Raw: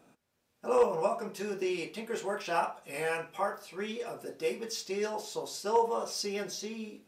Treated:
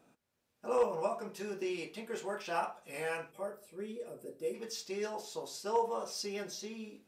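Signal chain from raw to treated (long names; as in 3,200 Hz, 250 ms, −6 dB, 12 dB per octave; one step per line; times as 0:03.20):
gain on a spectral selection 0:03.32–0:04.54, 640–7,300 Hz −11 dB
level −4.5 dB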